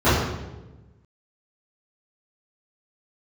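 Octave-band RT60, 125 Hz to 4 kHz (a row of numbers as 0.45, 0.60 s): 1.6, 1.5, 1.3, 0.95, 0.85, 0.80 s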